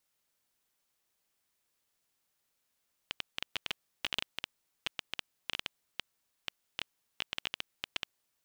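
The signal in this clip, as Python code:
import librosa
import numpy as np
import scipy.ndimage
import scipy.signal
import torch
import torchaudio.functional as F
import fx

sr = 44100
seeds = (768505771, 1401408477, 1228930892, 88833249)

y = fx.geiger_clicks(sr, seeds[0], length_s=5.45, per_s=8.4, level_db=-15.5)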